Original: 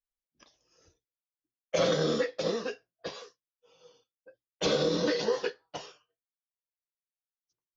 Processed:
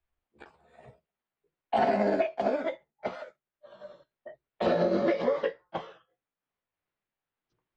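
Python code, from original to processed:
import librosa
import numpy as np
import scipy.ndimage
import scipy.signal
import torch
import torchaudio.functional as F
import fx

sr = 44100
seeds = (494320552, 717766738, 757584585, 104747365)

y = fx.pitch_glide(x, sr, semitones=6.5, runs='ending unshifted')
y = fx.air_absorb(y, sr, metres=490.0)
y = fx.band_squash(y, sr, depth_pct=40)
y = y * librosa.db_to_amplitude(5.5)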